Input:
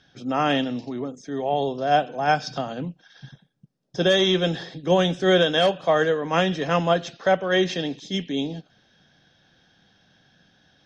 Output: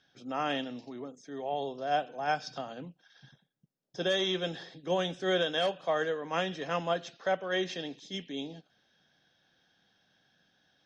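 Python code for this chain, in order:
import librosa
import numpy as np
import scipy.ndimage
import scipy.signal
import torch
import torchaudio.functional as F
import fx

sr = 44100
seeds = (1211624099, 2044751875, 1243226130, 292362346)

y = fx.low_shelf(x, sr, hz=200.0, db=-9.5)
y = y * librosa.db_to_amplitude(-9.0)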